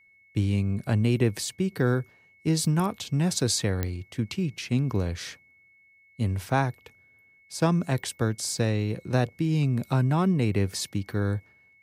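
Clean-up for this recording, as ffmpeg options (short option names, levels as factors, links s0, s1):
-af "adeclick=t=4,bandreject=f=2200:w=30"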